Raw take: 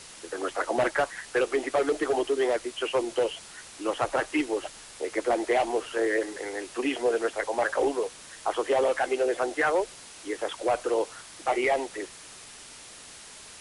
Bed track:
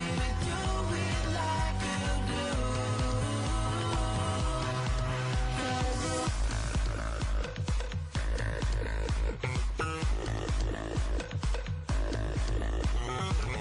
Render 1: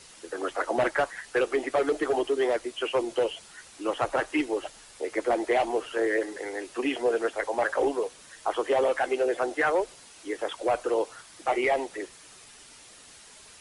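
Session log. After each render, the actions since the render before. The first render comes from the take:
broadband denoise 6 dB, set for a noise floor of −47 dBFS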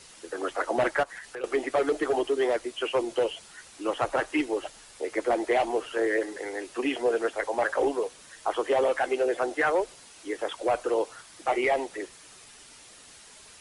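0:01.03–0:01.44: downward compressor 4 to 1, threshold −37 dBFS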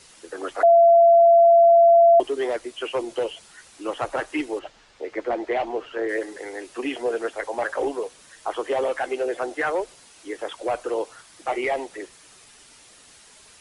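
0:00.63–0:02.20: beep over 679 Hz −10 dBFS
0:04.59–0:06.09: high-frequency loss of the air 130 metres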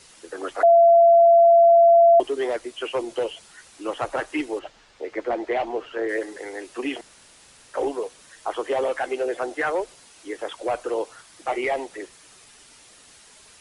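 0:07.01–0:07.74: fill with room tone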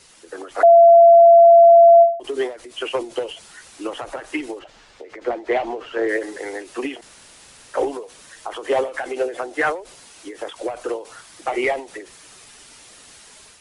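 automatic gain control gain up to 5 dB
every ending faded ahead of time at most 140 dB per second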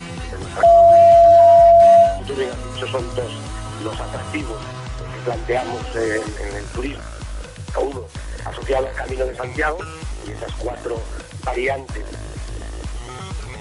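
mix in bed track +1 dB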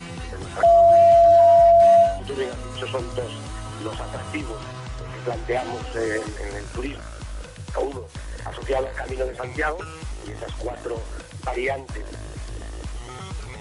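level −4 dB

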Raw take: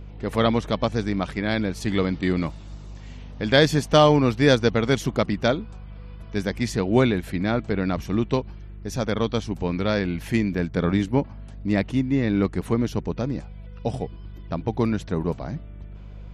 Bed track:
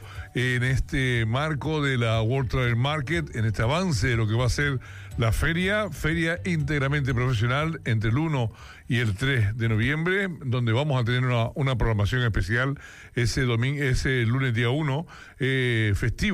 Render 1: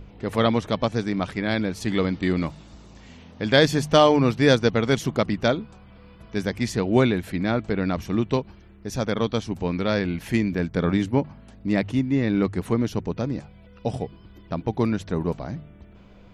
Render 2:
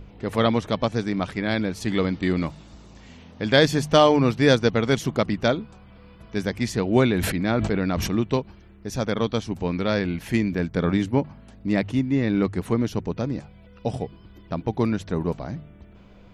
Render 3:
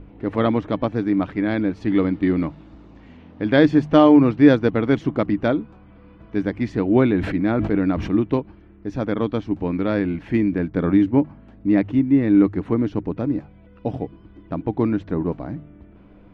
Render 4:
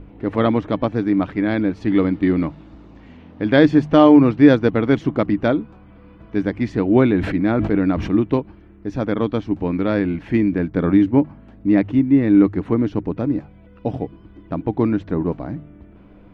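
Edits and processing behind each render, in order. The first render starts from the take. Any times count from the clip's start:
hum removal 50 Hz, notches 3
0:07.10–0:08.11: level that may fall only so fast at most 28 dB per second
low-pass filter 2,200 Hz 12 dB per octave; parametric band 300 Hz +11.5 dB 0.31 octaves
level +2 dB; brickwall limiter −1 dBFS, peak gain reduction 2 dB

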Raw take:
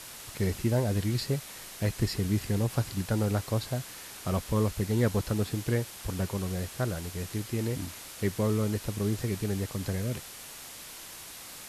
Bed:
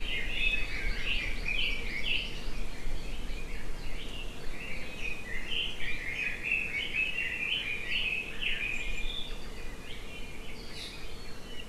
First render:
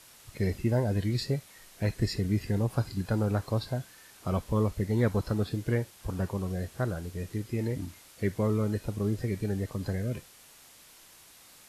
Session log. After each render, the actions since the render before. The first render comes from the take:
noise reduction from a noise print 10 dB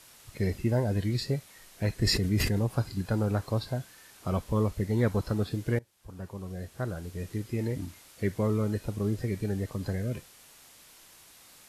0:02.00–0:02.64: level that may fall only so fast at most 35 dB per second
0:05.79–0:07.28: fade in, from −22.5 dB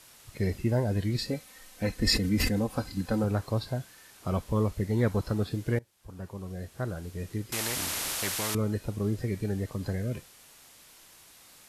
0:01.16–0:03.24: comb filter 3.9 ms
0:07.52–0:08.55: every bin compressed towards the loudest bin 4 to 1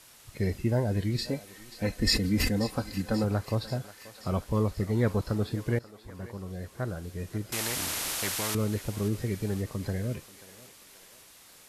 feedback echo with a high-pass in the loop 534 ms, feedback 64%, high-pass 490 Hz, level −15 dB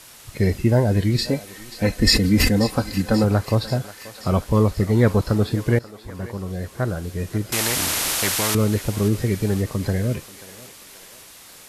level +9.5 dB
brickwall limiter −3 dBFS, peak gain reduction 1.5 dB

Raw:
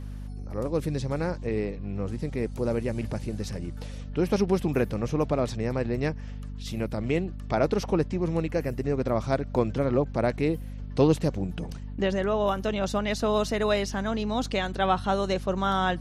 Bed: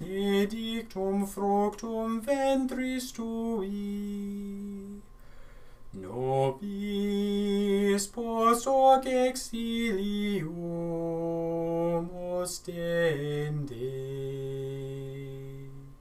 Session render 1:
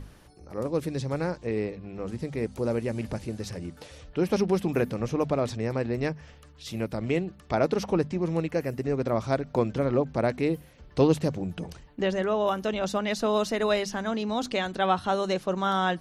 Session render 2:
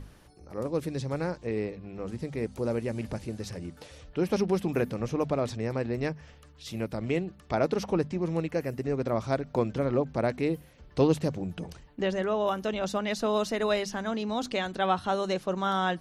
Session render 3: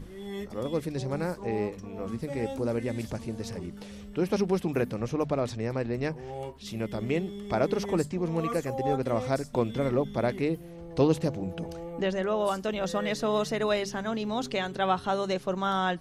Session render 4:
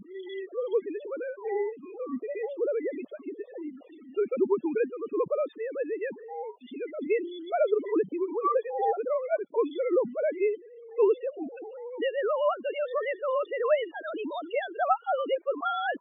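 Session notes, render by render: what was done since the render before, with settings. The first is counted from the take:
mains-hum notches 50/100/150/200/250 Hz
level −2 dB
mix in bed −11 dB
three sine waves on the formant tracks; spectral peaks only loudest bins 16

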